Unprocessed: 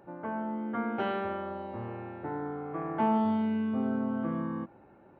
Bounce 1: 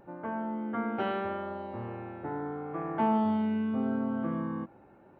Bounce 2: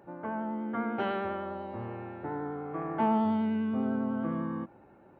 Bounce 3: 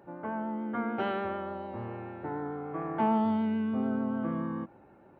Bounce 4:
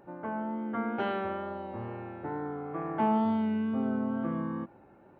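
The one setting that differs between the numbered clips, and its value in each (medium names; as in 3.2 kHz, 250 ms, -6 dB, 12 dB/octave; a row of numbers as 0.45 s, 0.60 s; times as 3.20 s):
vibrato, rate: 0.81 Hz, 10 Hz, 6.8 Hz, 2.2 Hz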